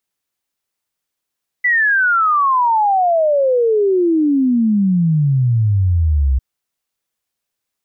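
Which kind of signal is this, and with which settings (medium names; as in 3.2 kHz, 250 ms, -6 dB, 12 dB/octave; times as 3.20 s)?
log sweep 2 kHz -> 63 Hz 4.75 s -11 dBFS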